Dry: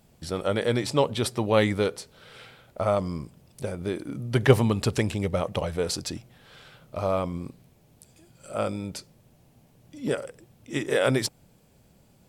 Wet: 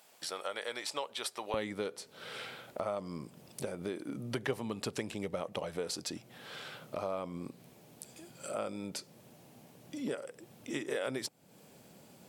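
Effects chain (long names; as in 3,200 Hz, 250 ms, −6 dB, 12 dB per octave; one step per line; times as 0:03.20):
high-pass filter 770 Hz 12 dB per octave, from 0:01.54 200 Hz
downward compressor 3 to 1, threshold −44 dBFS, peak gain reduction 23 dB
level +5 dB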